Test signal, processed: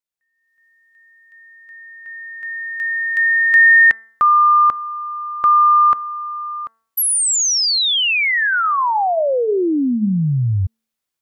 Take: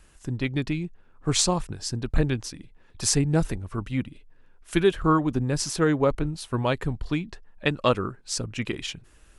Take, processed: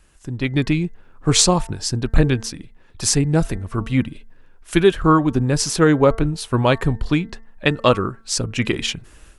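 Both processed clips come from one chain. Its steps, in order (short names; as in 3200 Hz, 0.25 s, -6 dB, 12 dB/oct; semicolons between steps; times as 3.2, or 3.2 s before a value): de-hum 225.1 Hz, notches 9; AGC gain up to 11 dB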